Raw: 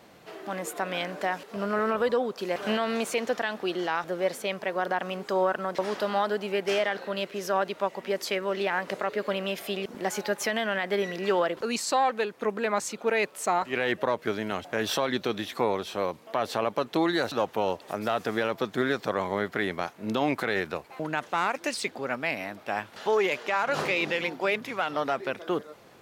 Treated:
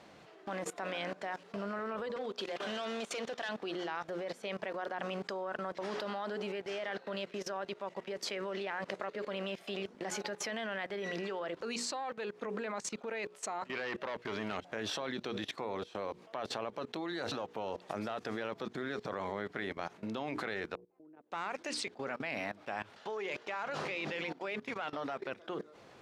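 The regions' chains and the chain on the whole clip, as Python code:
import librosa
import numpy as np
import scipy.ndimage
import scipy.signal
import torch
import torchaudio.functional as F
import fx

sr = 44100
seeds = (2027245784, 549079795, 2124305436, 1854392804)

y = fx.chain(x, sr, fx.peak_eq(hz=3400.0, db=6.0, octaves=0.46),
    fx.overload_stage(gain_db=23.5),
    fx.highpass(hz=210.0, slope=6), at=(2.16, 3.49))
y = fx.chain(y, sr, fx.peak_eq(hz=2300.0, db=4.5, octaves=3.0),
    fx.transformer_sat(knee_hz=1400.0), at=(13.7, 14.57))
y = fx.chain(y, sr, fx.bandpass_q(hz=340.0, q=3.8),
    fx.level_steps(step_db=13), at=(20.75, 21.32))
y = scipy.signal.sosfilt(scipy.signal.butter(2, 7100.0, 'lowpass', fs=sr, output='sos'), y)
y = fx.hum_notches(y, sr, base_hz=60, count=8)
y = fx.level_steps(y, sr, step_db=19)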